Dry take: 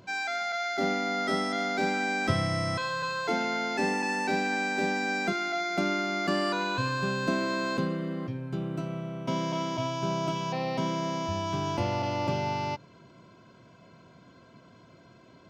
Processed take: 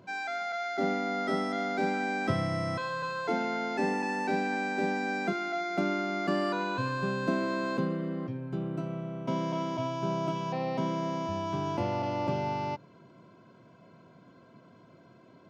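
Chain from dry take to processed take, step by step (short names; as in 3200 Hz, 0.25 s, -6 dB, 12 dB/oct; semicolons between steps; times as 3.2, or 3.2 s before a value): HPF 120 Hz; high shelf 2100 Hz -9.5 dB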